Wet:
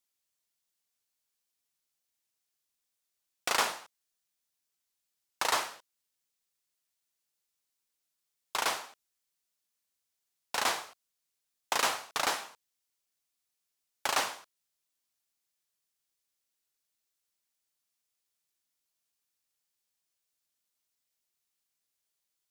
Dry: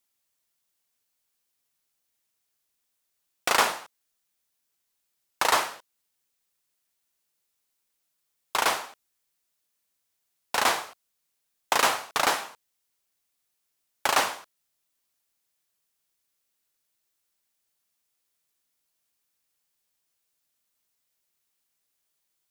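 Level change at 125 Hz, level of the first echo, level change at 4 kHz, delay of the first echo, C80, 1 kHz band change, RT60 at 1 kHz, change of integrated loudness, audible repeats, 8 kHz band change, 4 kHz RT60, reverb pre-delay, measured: −7.5 dB, no echo audible, −5.0 dB, no echo audible, no reverb audible, −7.0 dB, no reverb audible, −6.0 dB, no echo audible, −4.5 dB, no reverb audible, no reverb audible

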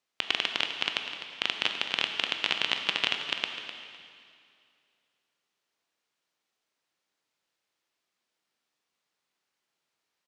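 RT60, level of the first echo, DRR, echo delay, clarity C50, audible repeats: 2.4 s, −12.0 dB, 4.0 dB, 254 ms, 5.0 dB, 2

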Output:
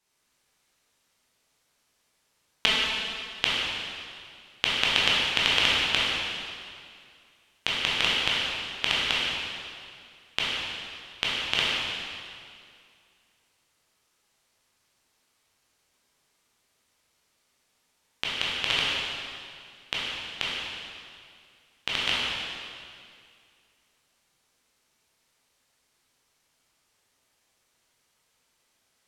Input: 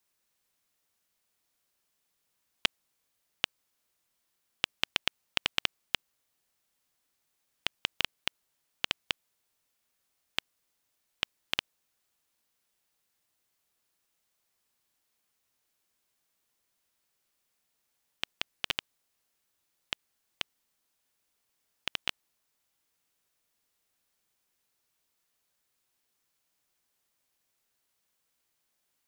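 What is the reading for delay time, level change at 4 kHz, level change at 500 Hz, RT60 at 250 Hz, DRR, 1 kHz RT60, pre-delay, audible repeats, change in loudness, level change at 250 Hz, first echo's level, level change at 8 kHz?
no echo audible, +10.5 dB, +11.5 dB, 2.3 s, −7.0 dB, 2.2 s, 7 ms, no echo audible, +8.5 dB, +11.0 dB, no echo audible, +9.0 dB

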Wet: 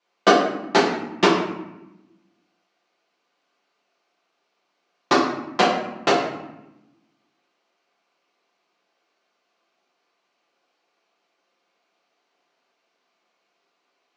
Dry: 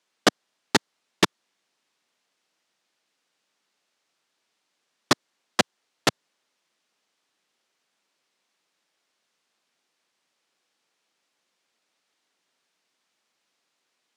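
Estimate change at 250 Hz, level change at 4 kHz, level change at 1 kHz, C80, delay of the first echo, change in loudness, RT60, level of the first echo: +6.5 dB, +1.0 dB, +9.0 dB, 6.5 dB, no echo audible, +5.0 dB, 0.95 s, no echo audible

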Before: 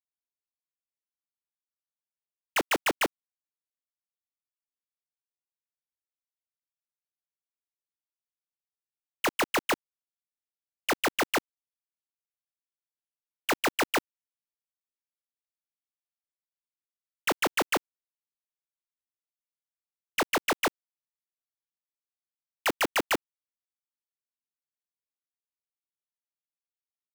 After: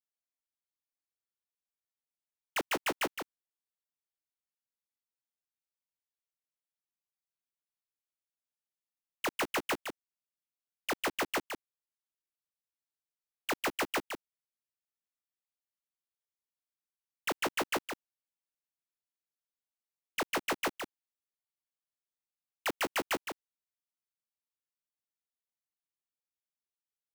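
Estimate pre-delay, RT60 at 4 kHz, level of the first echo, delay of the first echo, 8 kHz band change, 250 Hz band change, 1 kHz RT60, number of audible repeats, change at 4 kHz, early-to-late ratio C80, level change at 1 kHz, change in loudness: no reverb audible, no reverb audible, −7.0 dB, 164 ms, −5.5 dB, −5.5 dB, no reverb audible, 1, −5.5 dB, no reverb audible, −5.5 dB, −6.5 dB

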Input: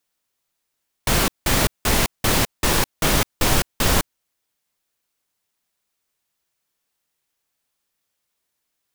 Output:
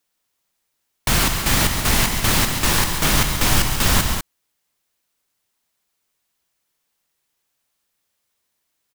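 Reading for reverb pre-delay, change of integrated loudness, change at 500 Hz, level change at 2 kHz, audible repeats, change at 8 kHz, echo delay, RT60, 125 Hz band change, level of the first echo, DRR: no reverb audible, +2.0 dB, −3.0 dB, +2.5 dB, 2, +3.0 dB, 138 ms, no reverb audible, +3.0 dB, −9.5 dB, no reverb audible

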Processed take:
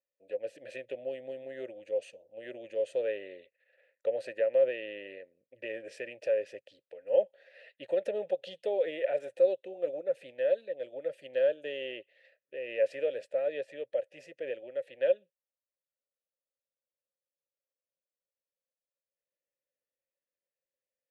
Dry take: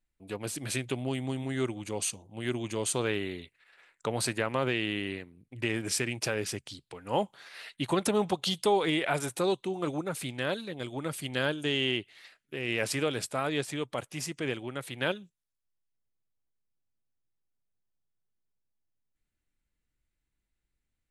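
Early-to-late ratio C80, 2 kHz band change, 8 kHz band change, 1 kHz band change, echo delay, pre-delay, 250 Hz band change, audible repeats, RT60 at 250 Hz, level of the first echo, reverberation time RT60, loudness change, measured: no reverb audible, −10.0 dB, below −25 dB, −15.0 dB, no echo audible, no reverb audible, −16.5 dB, no echo audible, no reverb audible, no echo audible, no reverb audible, −1.5 dB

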